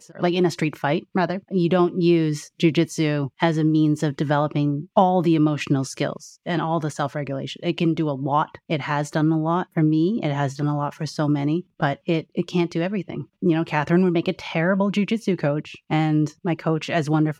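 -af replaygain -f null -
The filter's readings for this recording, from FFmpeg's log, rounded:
track_gain = +3.0 dB
track_peak = 0.402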